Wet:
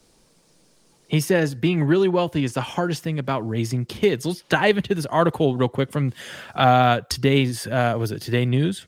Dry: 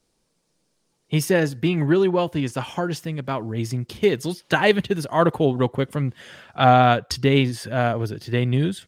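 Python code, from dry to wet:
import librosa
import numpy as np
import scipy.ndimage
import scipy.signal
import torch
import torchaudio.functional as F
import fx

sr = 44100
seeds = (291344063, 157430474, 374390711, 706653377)

y = fx.high_shelf(x, sr, hz=6600.0, db=9.0, at=(6.08, 8.49))
y = fx.band_squash(y, sr, depth_pct=40)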